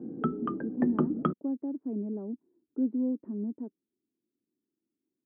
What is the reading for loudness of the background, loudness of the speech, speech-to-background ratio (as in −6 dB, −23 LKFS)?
−32.0 LKFS, −34.5 LKFS, −2.5 dB